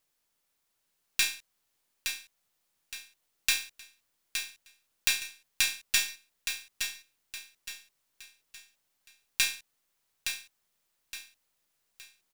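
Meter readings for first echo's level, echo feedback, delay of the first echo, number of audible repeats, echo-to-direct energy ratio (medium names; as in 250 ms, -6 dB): -7.0 dB, 37%, 867 ms, 4, -6.5 dB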